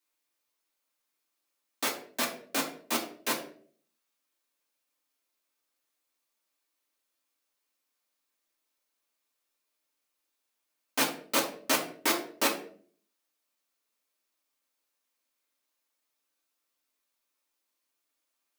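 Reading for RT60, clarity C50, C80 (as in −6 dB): 0.50 s, 9.0 dB, 13.0 dB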